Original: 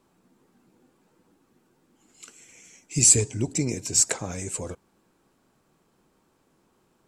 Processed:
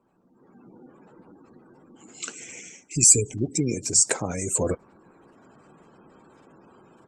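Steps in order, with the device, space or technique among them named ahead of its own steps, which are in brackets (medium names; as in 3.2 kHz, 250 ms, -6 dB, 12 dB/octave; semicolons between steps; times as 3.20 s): noise-suppressed video call (high-pass 120 Hz 6 dB/octave; spectral gate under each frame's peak -20 dB strong; level rider gain up to 15.5 dB; trim -1 dB; Opus 20 kbps 48 kHz)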